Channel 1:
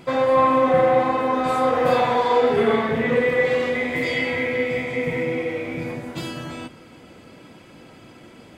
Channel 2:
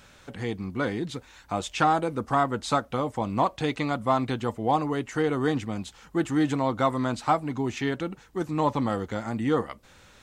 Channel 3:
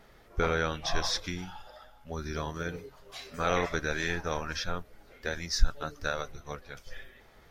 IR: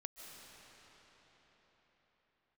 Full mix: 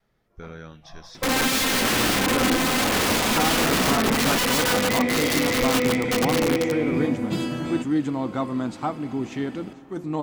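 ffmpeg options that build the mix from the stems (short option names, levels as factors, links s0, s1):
-filter_complex "[0:a]aeval=exprs='(mod(7.5*val(0)+1,2)-1)/7.5':c=same,adelay=1150,volume=0.944[s0];[1:a]adelay=1550,volume=0.447,asplit=2[s1][s2];[s2]volume=0.335[s3];[2:a]equalizer=f=170:t=o:w=1.4:g=9,volume=0.188[s4];[3:a]atrim=start_sample=2205[s5];[s3][s5]afir=irnorm=-1:irlink=0[s6];[s0][s1][s4][s6]amix=inputs=4:normalize=0,bandreject=f=178:t=h:w=4,bandreject=f=356:t=h:w=4,bandreject=f=534:t=h:w=4,bandreject=f=712:t=h:w=4,bandreject=f=890:t=h:w=4,bandreject=f=1068:t=h:w=4,bandreject=f=1246:t=h:w=4,bandreject=f=1424:t=h:w=4,bandreject=f=1602:t=h:w=4,bandreject=f=1780:t=h:w=4,bandreject=f=1958:t=h:w=4,bandreject=f=2136:t=h:w=4,bandreject=f=2314:t=h:w=4,bandreject=f=2492:t=h:w=4,bandreject=f=2670:t=h:w=4,bandreject=f=2848:t=h:w=4,bandreject=f=3026:t=h:w=4,bandreject=f=3204:t=h:w=4,bandreject=f=3382:t=h:w=4,bandreject=f=3560:t=h:w=4,bandreject=f=3738:t=h:w=4,bandreject=f=3916:t=h:w=4,bandreject=f=4094:t=h:w=4,bandreject=f=4272:t=h:w=4,bandreject=f=4450:t=h:w=4,bandreject=f=4628:t=h:w=4,bandreject=f=4806:t=h:w=4,bandreject=f=4984:t=h:w=4,bandreject=f=5162:t=h:w=4,bandreject=f=5340:t=h:w=4,bandreject=f=5518:t=h:w=4,bandreject=f=5696:t=h:w=4,bandreject=f=5874:t=h:w=4,bandreject=f=6052:t=h:w=4,adynamicequalizer=threshold=0.00794:dfrequency=250:dqfactor=0.97:tfrequency=250:tqfactor=0.97:attack=5:release=100:ratio=0.375:range=4:mode=boostabove:tftype=bell"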